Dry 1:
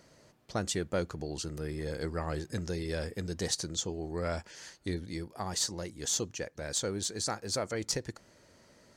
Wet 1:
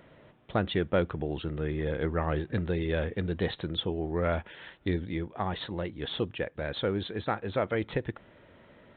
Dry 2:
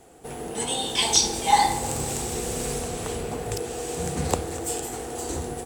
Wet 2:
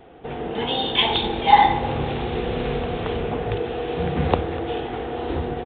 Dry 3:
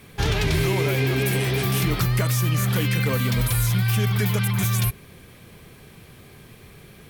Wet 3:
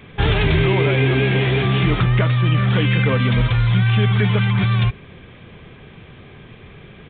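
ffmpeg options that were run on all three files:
-af "aresample=8000,aresample=44100,volume=5.5dB"

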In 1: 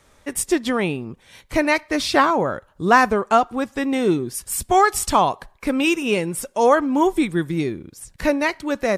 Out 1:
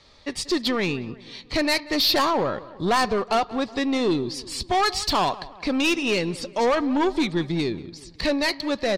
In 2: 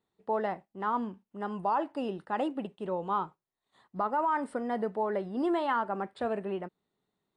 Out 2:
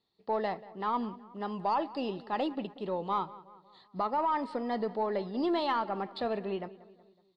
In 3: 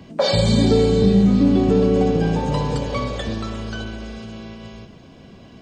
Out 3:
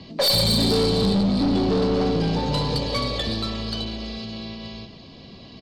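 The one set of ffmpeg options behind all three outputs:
-filter_complex "[0:a]lowpass=f=4.4k:t=q:w=6.1,bandreject=f=1.5k:w=6.5,aeval=exprs='(tanh(6.31*val(0)+0.1)-tanh(0.1))/6.31':c=same,asplit=2[a][b];[b]adelay=185,lowpass=f=2.7k:p=1,volume=-18dB,asplit=2[c][d];[d]adelay=185,lowpass=f=2.7k:p=1,volume=0.52,asplit=2[e][f];[f]adelay=185,lowpass=f=2.7k:p=1,volume=0.52,asplit=2[g][h];[h]adelay=185,lowpass=f=2.7k:p=1,volume=0.52[i];[c][e][g][i]amix=inputs=4:normalize=0[j];[a][j]amix=inputs=2:normalize=0" -ar 48000 -c:a libmp3lame -b:a 96k

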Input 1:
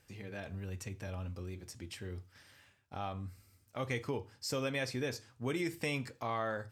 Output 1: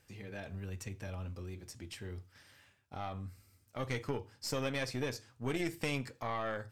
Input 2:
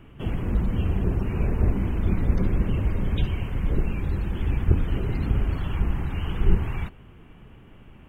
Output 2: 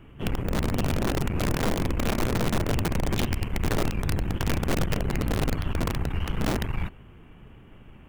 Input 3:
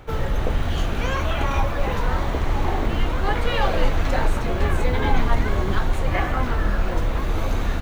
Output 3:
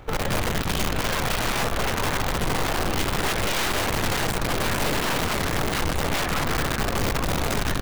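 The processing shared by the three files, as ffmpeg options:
-af "aeval=exprs='(mod(7.5*val(0)+1,2)-1)/7.5':c=same,aeval=exprs='(tanh(20*val(0)+0.75)-tanh(0.75))/20':c=same,volume=4dB"

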